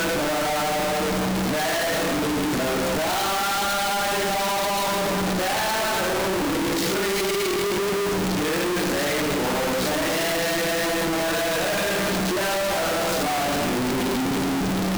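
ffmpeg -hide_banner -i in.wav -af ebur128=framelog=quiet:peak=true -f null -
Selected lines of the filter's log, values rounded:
Integrated loudness:
  I:         -22.8 LUFS
  Threshold: -32.8 LUFS
Loudness range:
  LRA:         0.4 LU
  Threshold: -42.8 LUFS
  LRA low:   -23.0 LUFS
  LRA high:  -22.6 LUFS
True peak:
  Peak:      -18.8 dBFS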